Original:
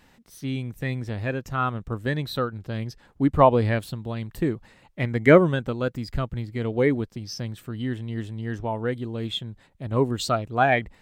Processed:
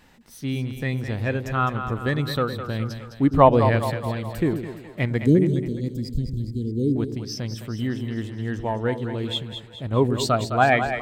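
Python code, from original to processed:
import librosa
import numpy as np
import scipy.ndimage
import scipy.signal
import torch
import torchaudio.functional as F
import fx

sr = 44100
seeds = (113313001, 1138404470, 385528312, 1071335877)

p1 = fx.cheby2_bandstop(x, sr, low_hz=800.0, high_hz=2000.0, order=4, stop_db=60, at=(5.23, 6.96))
p2 = p1 + fx.echo_split(p1, sr, split_hz=460.0, low_ms=107, high_ms=209, feedback_pct=52, wet_db=-8.5, dry=0)
y = F.gain(torch.from_numpy(p2), 2.0).numpy()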